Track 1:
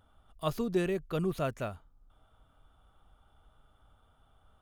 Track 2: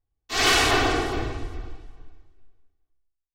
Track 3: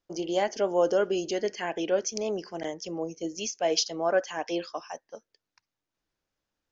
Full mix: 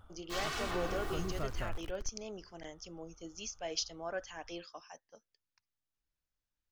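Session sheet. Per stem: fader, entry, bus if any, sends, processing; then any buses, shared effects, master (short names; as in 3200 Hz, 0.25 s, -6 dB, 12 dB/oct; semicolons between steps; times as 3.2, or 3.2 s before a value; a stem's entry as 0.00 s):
+2.0 dB, 0.00 s, bus A, no send, auto duck -9 dB, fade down 0.25 s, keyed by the third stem
-13.5 dB, 0.00 s, bus A, no send, notches 50/100 Hz; requantised 6-bit, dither none
-9.0 dB, 0.00 s, no bus, no send, bell 440 Hz -7 dB 2.5 oct
bus A: 0.0 dB, bell 1200 Hz +6 dB 0.73 oct; compressor 6:1, threshold -36 dBFS, peak gain reduction 10 dB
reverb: off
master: low shelf 77 Hz +12 dB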